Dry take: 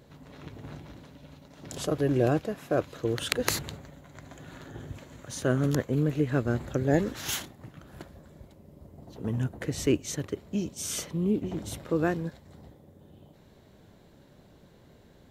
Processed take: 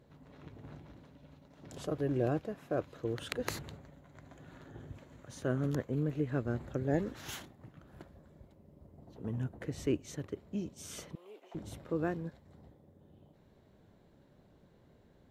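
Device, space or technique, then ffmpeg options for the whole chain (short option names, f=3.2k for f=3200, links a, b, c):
behind a face mask: -filter_complex "[0:a]asettb=1/sr,asplit=3[a][b][c];[a]atrim=end=11.154[d];[b]atrim=start=11.15:end=11.55,asetpts=PTS-STARTPTS,afade=t=in:d=0.004:c=qsin,afade=t=out:st=0.396:d=0.004:c=qsin,highpass=f=610:w=0.5412,highpass=f=610:w=1.3066[e];[c]atrim=start=11.546[f];[d][e]acrossfade=d=0.004:c1=hsin:c2=qsin[g];[g][f]acrossfade=d=0.004:c1=qsin:c2=hsin,highshelf=f=2.8k:g=-8,volume=-7dB"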